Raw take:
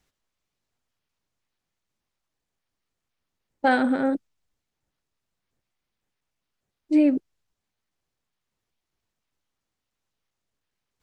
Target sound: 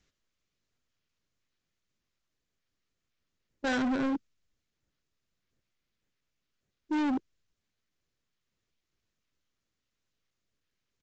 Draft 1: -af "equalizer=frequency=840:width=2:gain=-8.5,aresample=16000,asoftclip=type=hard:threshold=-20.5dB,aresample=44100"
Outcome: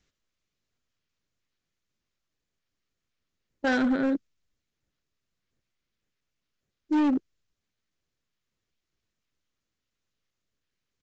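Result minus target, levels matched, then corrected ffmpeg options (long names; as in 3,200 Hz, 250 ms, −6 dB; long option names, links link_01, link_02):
hard clipping: distortion −4 dB
-af "equalizer=frequency=840:width=2:gain=-8.5,aresample=16000,asoftclip=type=hard:threshold=-27dB,aresample=44100"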